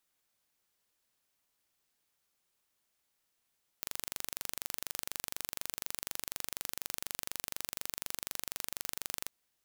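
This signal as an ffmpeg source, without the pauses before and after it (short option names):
-f lavfi -i "aevalsrc='0.355*eq(mod(n,1830),0)':d=5.45:s=44100"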